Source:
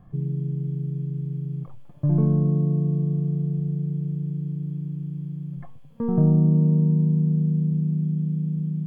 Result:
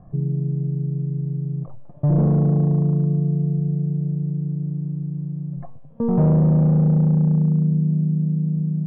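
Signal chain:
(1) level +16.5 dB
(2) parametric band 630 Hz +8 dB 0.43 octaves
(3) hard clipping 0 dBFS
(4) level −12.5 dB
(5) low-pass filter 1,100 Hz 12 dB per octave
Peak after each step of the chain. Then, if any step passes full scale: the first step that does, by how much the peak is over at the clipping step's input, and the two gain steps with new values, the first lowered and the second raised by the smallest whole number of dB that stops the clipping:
+8.5, +9.0, 0.0, −12.5, −12.0 dBFS
step 1, 9.0 dB
step 1 +7.5 dB, step 4 −3.5 dB

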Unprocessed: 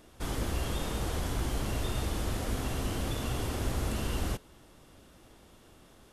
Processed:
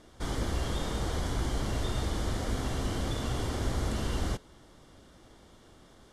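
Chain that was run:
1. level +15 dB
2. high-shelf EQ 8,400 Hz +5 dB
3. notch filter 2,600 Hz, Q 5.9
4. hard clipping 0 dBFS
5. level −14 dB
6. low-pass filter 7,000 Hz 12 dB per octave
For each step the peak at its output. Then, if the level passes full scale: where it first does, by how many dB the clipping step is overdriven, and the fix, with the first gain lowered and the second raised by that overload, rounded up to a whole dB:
−4.5, −4.5, −4.5, −4.5, −18.5, −19.0 dBFS
no step passes full scale

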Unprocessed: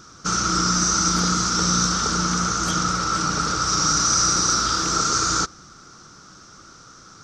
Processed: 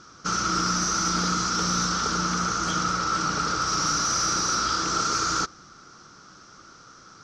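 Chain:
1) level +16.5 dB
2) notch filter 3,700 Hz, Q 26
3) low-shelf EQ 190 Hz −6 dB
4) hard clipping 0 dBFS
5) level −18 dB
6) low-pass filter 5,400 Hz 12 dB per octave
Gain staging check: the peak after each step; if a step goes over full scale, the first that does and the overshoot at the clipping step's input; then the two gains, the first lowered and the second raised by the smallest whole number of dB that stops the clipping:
+9.0, +9.0, +9.5, 0.0, −18.0, −17.5 dBFS
step 1, 9.5 dB
step 1 +6.5 dB, step 5 −8 dB

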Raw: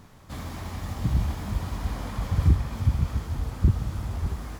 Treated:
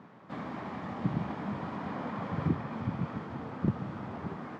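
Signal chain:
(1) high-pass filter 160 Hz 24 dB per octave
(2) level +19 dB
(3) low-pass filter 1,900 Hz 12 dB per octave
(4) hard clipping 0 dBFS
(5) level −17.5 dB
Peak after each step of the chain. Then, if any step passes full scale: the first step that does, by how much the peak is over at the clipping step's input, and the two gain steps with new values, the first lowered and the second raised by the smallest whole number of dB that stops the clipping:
−15.5, +3.5, +3.5, 0.0, −17.5 dBFS
step 2, 3.5 dB
step 2 +15 dB, step 5 −13.5 dB

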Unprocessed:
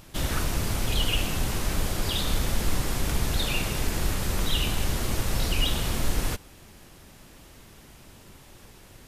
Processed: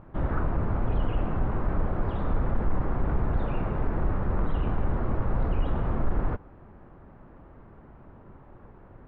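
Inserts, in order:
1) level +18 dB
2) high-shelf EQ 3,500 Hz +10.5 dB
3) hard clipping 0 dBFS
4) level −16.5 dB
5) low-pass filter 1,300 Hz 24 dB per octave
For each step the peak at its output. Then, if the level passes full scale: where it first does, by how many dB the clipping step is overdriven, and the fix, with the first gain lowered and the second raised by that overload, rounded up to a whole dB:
+6.5, +9.0, 0.0, −16.5, −16.0 dBFS
step 1, 9.0 dB
step 1 +9 dB, step 4 −7.5 dB

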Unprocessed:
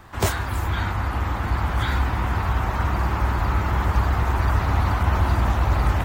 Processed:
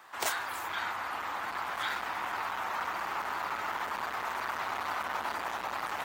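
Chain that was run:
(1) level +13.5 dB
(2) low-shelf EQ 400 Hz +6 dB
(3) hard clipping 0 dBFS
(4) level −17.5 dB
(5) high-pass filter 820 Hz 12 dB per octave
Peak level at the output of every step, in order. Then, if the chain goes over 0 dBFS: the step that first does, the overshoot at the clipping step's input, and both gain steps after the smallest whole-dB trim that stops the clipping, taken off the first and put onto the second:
+6.5, +10.0, 0.0, −17.5, −15.5 dBFS
step 1, 10.0 dB
step 1 +3.5 dB, step 4 −7.5 dB

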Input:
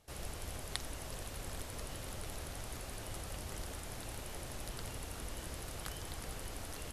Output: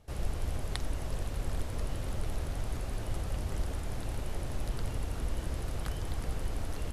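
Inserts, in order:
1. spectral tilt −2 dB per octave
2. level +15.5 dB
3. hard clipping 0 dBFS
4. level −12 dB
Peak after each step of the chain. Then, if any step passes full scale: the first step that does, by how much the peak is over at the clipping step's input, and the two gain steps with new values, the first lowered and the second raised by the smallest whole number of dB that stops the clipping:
−20.0, −4.5, −4.5, −16.5 dBFS
no step passes full scale

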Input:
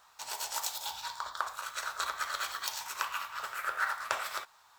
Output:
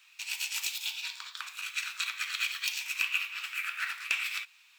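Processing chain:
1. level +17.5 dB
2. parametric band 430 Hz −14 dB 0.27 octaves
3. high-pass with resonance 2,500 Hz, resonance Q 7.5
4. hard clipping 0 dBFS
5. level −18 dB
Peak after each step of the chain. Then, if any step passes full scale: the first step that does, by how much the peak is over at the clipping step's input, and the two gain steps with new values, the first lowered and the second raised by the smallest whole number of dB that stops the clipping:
+5.0, +4.0, +6.5, 0.0, −18.0 dBFS
step 1, 6.5 dB
step 1 +10.5 dB, step 5 −11 dB

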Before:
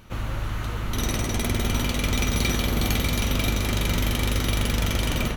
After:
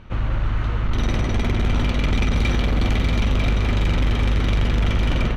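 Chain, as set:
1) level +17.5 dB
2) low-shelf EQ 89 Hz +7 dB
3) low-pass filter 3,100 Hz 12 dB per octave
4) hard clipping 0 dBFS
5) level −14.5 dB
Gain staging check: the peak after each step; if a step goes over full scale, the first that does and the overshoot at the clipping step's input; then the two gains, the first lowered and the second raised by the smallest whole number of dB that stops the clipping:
+8.0, +10.5, +9.0, 0.0, −14.5 dBFS
step 1, 9.0 dB
step 1 +8.5 dB, step 5 −5.5 dB

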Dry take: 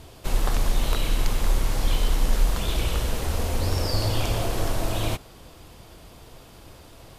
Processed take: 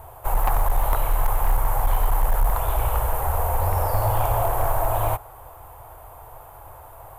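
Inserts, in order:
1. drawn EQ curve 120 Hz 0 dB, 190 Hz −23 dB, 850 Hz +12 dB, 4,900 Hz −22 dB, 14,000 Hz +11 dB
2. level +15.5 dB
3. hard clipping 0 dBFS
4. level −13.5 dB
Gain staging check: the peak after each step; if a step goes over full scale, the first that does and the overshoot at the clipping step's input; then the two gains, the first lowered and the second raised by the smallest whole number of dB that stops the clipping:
−7.5, +8.0, 0.0, −13.5 dBFS
step 2, 8.0 dB
step 2 +7.5 dB, step 4 −5.5 dB

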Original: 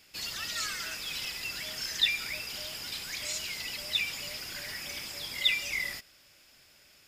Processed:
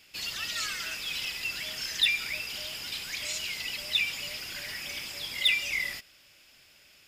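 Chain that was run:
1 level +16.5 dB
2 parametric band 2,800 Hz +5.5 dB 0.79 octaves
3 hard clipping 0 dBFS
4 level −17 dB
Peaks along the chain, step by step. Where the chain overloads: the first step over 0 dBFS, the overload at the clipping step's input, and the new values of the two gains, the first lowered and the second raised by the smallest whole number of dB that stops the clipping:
+4.0, +7.0, 0.0, −17.0 dBFS
step 1, 7.0 dB
step 1 +9.5 dB, step 4 −10 dB

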